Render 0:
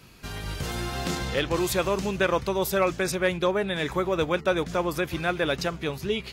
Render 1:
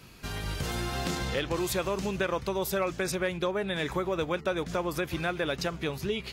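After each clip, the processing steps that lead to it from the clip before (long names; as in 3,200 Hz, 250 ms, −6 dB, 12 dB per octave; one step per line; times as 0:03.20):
downward compressor 2.5 to 1, threshold −28 dBFS, peak gain reduction 7 dB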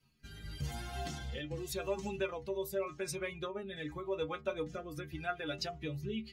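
spectral dynamics exaggerated over time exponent 1.5
stiff-string resonator 71 Hz, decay 0.29 s, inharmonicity 0.008
rotating-speaker cabinet horn 0.85 Hz
level +4.5 dB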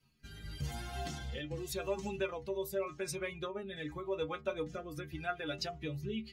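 no processing that can be heard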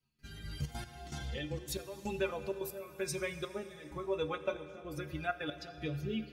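gate pattern "..xxxxx.x." 161 BPM −12 dB
convolution reverb RT60 3.4 s, pre-delay 7 ms, DRR 11 dB
level +1.5 dB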